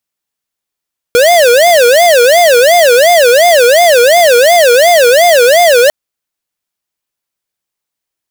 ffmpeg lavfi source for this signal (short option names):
-f lavfi -i "aevalsrc='0.531*(2*lt(mod((590*t-116/(2*PI*2.8)*sin(2*PI*2.8*t)),1),0.5)-1)':d=4.75:s=44100"